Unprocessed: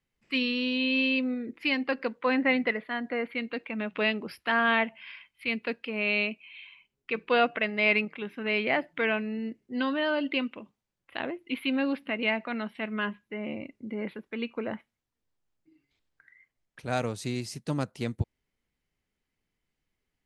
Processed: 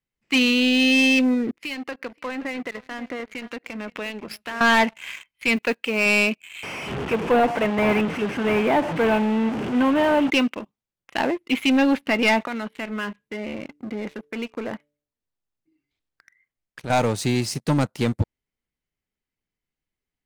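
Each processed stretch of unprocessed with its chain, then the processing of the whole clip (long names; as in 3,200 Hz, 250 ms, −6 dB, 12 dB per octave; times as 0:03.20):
0:01.51–0:04.61: downward compressor 5 to 1, threshold −40 dBFS + single-tap delay 527 ms −14 dB + multiband upward and downward expander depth 70%
0:05.56–0:06.06: one scale factor per block 7 bits + low-shelf EQ 250 Hz −5.5 dB
0:06.63–0:10.30: linear delta modulator 16 kbit/s, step −31 dBFS + high-pass filter 93 Hz + parametric band 2,000 Hz −6.5 dB 1.6 octaves
0:12.47–0:16.90: hum removal 146.8 Hz, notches 4 + downward compressor 2 to 1, threshold −43 dBFS
whole clip: dynamic equaliser 870 Hz, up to +7 dB, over −49 dBFS, Q 6; leveller curve on the samples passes 3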